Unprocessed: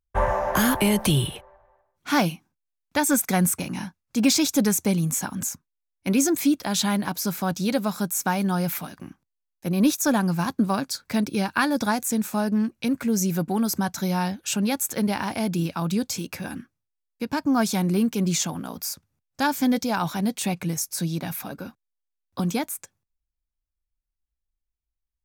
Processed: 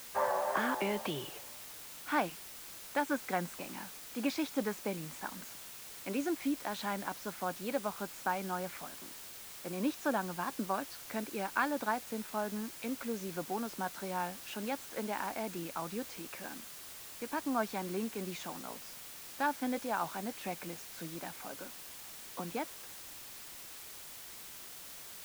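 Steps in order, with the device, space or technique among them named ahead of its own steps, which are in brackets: wax cylinder (band-pass 370–2200 Hz; wow and flutter; white noise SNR 10 dB); trim -7.5 dB

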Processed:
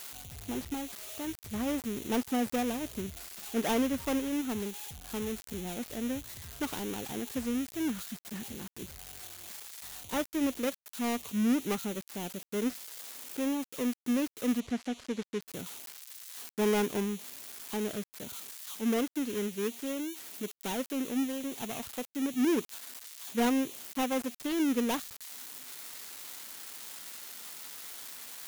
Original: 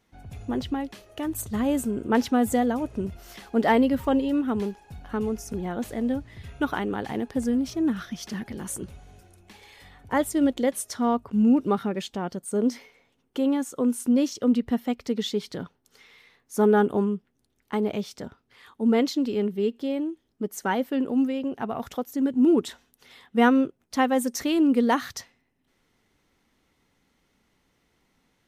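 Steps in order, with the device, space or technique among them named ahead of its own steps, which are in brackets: budget class-D amplifier (dead-time distortion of 0.29 ms; zero-crossing glitches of -17 dBFS); 14.60–15.41 s: low-pass 5.9 kHz 12 dB/octave; trim -8 dB

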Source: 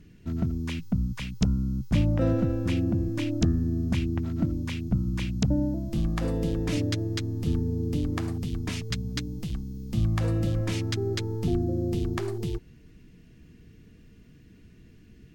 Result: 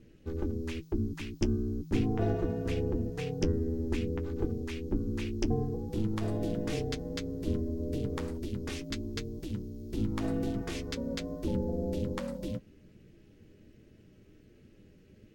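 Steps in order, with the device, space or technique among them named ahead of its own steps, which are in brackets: alien voice (ring modulator 160 Hz; flange 1.3 Hz, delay 8.9 ms, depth 1.4 ms, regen -43%); trim +1.5 dB

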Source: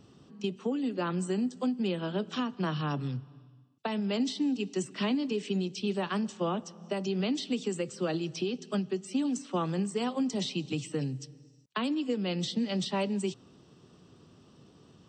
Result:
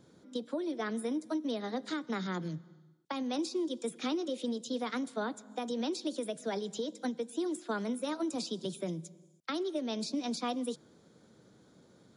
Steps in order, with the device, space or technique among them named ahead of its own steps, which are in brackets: nightcore (tape speed +24%); trim -4 dB

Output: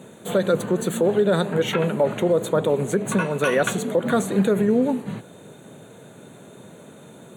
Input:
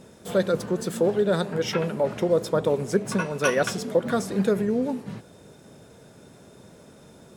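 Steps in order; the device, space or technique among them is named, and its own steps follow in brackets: PA system with an anti-feedback notch (high-pass 110 Hz 24 dB/octave; Butterworth band-stop 5.2 kHz, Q 2.6; peak limiter -16 dBFS, peak gain reduction 7 dB); trim +5.5 dB

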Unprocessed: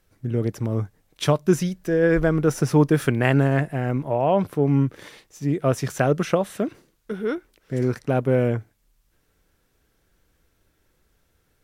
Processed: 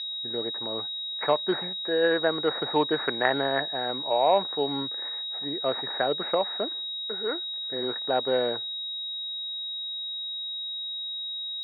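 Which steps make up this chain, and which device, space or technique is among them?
5.49–6.36 s: peaking EQ 990 Hz -4.5 dB 1.9 oct; toy sound module (decimation joined by straight lines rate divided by 8×; class-D stage that switches slowly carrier 3.8 kHz; cabinet simulation 530–3600 Hz, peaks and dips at 840 Hz +5 dB, 1.8 kHz +8 dB, 3.1 kHz -5 dB)

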